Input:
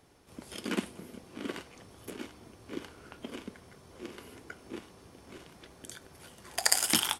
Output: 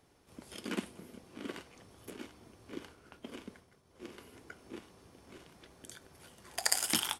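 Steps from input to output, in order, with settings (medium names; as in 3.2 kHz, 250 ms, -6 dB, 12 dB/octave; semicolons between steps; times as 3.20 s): 2.72–4.34 s: expander -47 dBFS; trim -4.5 dB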